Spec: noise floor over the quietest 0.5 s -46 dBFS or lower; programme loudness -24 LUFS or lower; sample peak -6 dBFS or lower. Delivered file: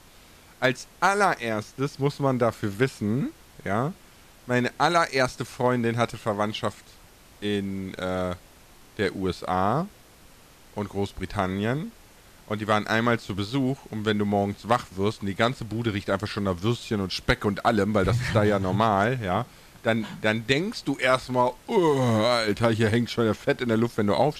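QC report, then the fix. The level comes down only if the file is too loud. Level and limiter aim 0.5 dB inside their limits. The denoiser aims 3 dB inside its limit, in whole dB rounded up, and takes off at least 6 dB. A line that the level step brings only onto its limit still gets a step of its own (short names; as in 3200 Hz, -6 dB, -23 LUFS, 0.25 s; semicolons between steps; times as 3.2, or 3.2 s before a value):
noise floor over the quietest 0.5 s -52 dBFS: OK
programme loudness -25.5 LUFS: OK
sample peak -7.0 dBFS: OK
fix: none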